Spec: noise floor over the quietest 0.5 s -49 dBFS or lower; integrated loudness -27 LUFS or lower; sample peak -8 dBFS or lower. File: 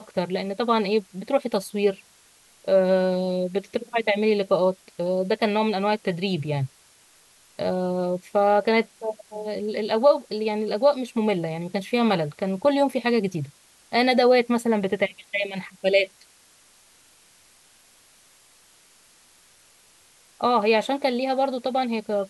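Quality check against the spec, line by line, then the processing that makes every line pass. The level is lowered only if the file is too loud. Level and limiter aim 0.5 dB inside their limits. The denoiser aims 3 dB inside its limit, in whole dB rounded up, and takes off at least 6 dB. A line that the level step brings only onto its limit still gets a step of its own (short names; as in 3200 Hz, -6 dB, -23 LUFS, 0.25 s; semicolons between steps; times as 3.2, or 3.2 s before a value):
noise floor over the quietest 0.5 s -56 dBFS: OK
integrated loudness -23.5 LUFS: fail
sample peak -6.5 dBFS: fail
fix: gain -4 dB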